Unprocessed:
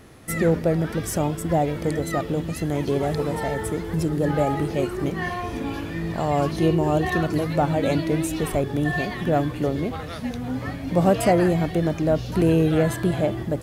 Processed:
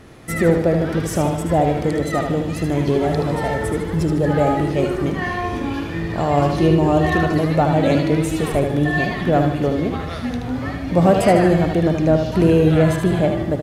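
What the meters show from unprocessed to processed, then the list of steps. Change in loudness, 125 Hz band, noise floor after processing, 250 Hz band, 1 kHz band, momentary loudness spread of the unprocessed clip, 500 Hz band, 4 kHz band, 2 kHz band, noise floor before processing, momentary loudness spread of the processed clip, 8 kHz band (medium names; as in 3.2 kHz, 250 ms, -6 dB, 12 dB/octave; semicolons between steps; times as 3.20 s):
+5.0 dB, +5.0 dB, -27 dBFS, +5.0 dB, +5.5 dB, 10 LU, +5.0 dB, +4.0 dB, +5.0 dB, -33 dBFS, 9 LU, +1.0 dB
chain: treble shelf 9.3 kHz -10.5 dB; on a send: feedback delay 76 ms, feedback 46%, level -6 dB; on the sum: trim +4 dB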